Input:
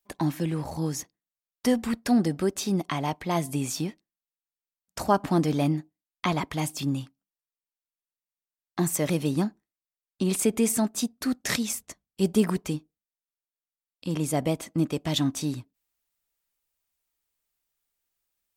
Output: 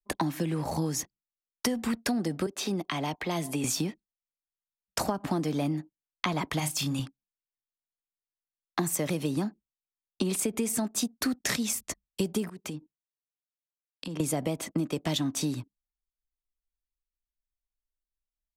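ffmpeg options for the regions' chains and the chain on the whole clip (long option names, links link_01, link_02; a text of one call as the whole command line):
ffmpeg -i in.wav -filter_complex "[0:a]asettb=1/sr,asplit=3[link_01][link_02][link_03];[link_01]atrim=end=2.464[link_04];[link_02]atrim=start=2.46:end=3.64,asetpts=PTS-STARTPTS,afade=type=in:duration=0.004:curve=qsin,afade=type=out:start_time=1.176:duration=0.004:curve=qsin,bass=frequency=250:gain=-13,treble=frequency=4000:gain=-9,acrossover=split=280|3000[link_05][link_06][link_07];[link_06]acompressor=threshold=-41dB:ratio=3:attack=3.2:release=140:knee=2.83:detection=peak[link_08];[link_05][link_08][link_07]amix=inputs=3:normalize=0[link_09];[link_03]atrim=start=3.636[link_10];[link_04][link_09]acrossfade=duration=0.004:curve1=hsin:curve2=qsin[link_11];[link_11][link_10]acrossfade=duration=0.004:curve1=qsin:curve2=hsin,asettb=1/sr,asplit=3[link_12][link_13][link_14];[link_12]atrim=end=6.594[link_15];[link_13]atrim=start=6.59:end=6.99,asetpts=PTS-STARTPTS,afade=type=in:duration=0.004:curve=qsin,afade=type=out:start_time=0.396:duration=0.004:curve=qsin,equalizer=frequency=340:width=0.74:gain=-11.5,asplit=2[link_16][link_17];[link_17]adelay=33,volume=-7dB[link_18];[link_16][link_18]amix=inputs=2:normalize=0,atrim=end_sample=17640[link_19];[link_14]atrim=start=6.986[link_20];[link_15][link_19]acrossfade=duration=0.004:curve1=hsin:curve2=qsin[link_21];[link_21][link_20]acrossfade=duration=0.004:curve1=qsin:curve2=hsin,asettb=1/sr,asplit=3[link_22][link_23][link_24];[link_22]atrim=end=12.484[link_25];[link_23]atrim=start=12.48:end=14.2,asetpts=PTS-STARTPTS,afade=type=in:duration=0.004:curve=qsin,afade=type=out:start_time=1.716:duration=0.004:curve=qsin,highpass=120,acompressor=threshold=-43dB:ratio=5:attack=3.2:release=140:knee=1:detection=peak[link_26];[link_24]atrim=start=14.196[link_27];[link_25][link_26]acrossfade=duration=0.004:curve1=hsin:curve2=qsin[link_28];[link_28][link_27]acrossfade=duration=0.004:curve1=qsin:curve2=hsin,acrossover=split=110|240[link_29][link_30][link_31];[link_29]acompressor=threshold=-53dB:ratio=4[link_32];[link_30]acompressor=threshold=-30dB:ratio=4[link_33];[link_31]acompressor=threshold=-25dB:ratio=4[link_34];[link_32][link_33][link_34]amix=inputs=3:normalize=0,anlmdn=0.0001,acompressor=threshold=-35dB:ratio=6,volume=8.5dB" out.wav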